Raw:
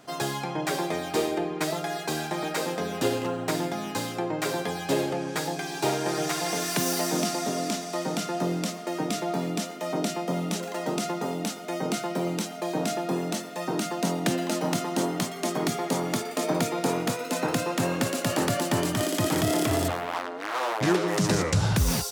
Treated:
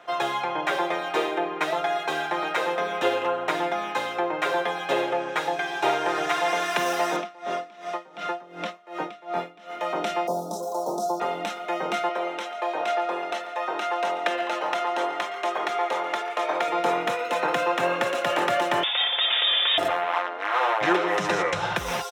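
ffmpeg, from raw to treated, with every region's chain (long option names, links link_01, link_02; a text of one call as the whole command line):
ffmpeg -i in.wav -filter_complex "[0:a]asettb=1/sr,asplit=3[link_01][link_02][link_03];[link_01]atrim=end=7.164[link_04];[link_02]atrim=start=7.16:end=9.77,asetpts=PTS-STARTPTS,afade=type=in:duration=0.004:curve=qsin,afade=type=out:start_time=2.606:duration=0.004:curve=qsin,acrossover=split=4900[link_05][link_06];[link_06]acompressor=threshold=-45dB:ratio=4:attack=1:release=60[link_07];[link_05][link_07]amix=inputs=2:normalize=0,aeval=exprs='val(0)*pow(10,-23*(0.5-0.5*cos(2*PI*2.7*n/s))/20)':channel_layout=same[link_08];[link_03]atrim=start=9.766[link_09];[link_04][link_08]acrossfade=duration=0.004:curve1=hsin:curve2=qsin[link_10];[link_10][link_09]acrossfade=duration=0.004:curve1=qsin:curve2=hsin,asettb=1/sr,asplit=3[link_11][link_12][link_13];[link_11]atrim=end=10.274[link_14];[link_12]atrim=start=10.27:end=11.2,asetpts=PTS-STARTPTS,afade=type=in:duration=0.004:curve=qsin,afade=type=out:start_time=0.926:duration=0.004:curve=qsin,aemphasis=mode=production:type=75kf,acrossover=split=3800[link_15][link_16];[link_16]acompressor=threshold=-29dB:ratio=4:attack=1:release=60[link_17];[link_15][link_17]amix=inputs=2:normalize=0,asuperstop=centerf=2200:order=8:qfactor=0.57[link_18];[link_13]atrim=start=11.196[link_19];[link_14][link_18]acrossfade=duration=0.004:curve1=hsin:curve2=qsin[link_20];[link_20][link_19]acrossfade=duration=0.004:curve1=qsin:curve2=hsin,asettb=1/sr,asplit=3[link_21][link_22][link_23];[link_21]atrim=end=12.094[link_24];[link_22]atrim=start=12.09:end=16.68,asetpts=PTS-STARTPTS,afade=type=in:duration=0.004:curve=qsin,afade=type=out:start_time=4.586:duration=0.004:curve=qsin,highpass=430,highshelf=frequency=6800:gain=-8,aecho=1:1:141:0.158,atrim=end_sample=202419[link_25];[link_23]atrim=start=16.676[link_26];[link_24][link_25]acrossfade=duration=0.004:curve1=hsin:curve2=qsin[link_27];[link_27][link_26]acrossfade=duration=0.004:curve1=qsin:curve2=hsin,asettb=1/sr,asplit=3[link_28][link_29][link_30];[link_28]atrim=end=18.834[link_31];[link_29]atrim=start=18.83:end=19.78,asetpts=PTS-STARTPTS,afade=type=in:duration=0.004:curve=qsin,afade=type=out:start_time=0.946:duration=0.004:curve=qsin,aemphasis=mode=production:type=50fm,aeval=exprs='clip(val(0),-1,0.0841)':channel_layout=same,lowpass=frequency=3200:width_type=q:width=0.5098,lowpass=frequency=3200:width_type=q:width=0.6013,lowpass=frequency=3200:width_type=q:width=0.9,lowpass=frequency=3200:width_type=q:width=2.563,afreqshift=-3800[link_32];[link_30]atrim=start=19.776[link_33];[link_31][link_32]acrossfade=duration=0.004:curve1=hsin:curve2=qsin[link_34];[link_34][link_33]acrossfade=duration=0.004:curve1=qsin:curve2=hsin,acrossover=split=450 3700:gain=0.0891 1 0.112[link_35][link_36][link_37];[link_35][link_36][link_37]amix=inputs=3:normalize=0,bandreject=frequency=4600:width=5.7,aecho=1:1:5.7:0.44,volume=6dB" out.wav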